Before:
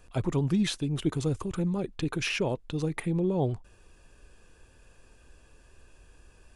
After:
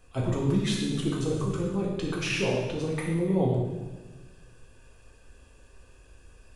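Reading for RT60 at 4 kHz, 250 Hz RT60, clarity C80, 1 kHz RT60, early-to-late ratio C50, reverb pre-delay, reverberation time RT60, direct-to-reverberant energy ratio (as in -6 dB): 1.2 s, 1.6 s, 4.0 dB, 1.2 s, 2.0 dB, 3 ms, 1.3 s, -3.5 dB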